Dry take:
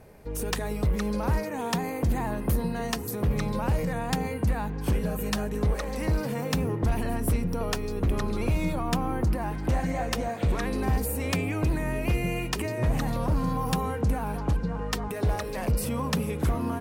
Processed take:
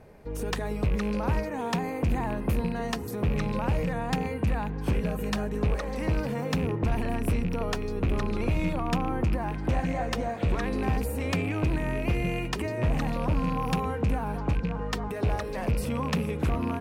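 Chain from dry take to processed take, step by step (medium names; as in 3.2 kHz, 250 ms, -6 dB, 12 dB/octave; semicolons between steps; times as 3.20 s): rattle on loud lows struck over -27 dBFS, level -28 dBFS; low-pass 3.8 kHz 6 dB/octave; hum notches 60/120 Hz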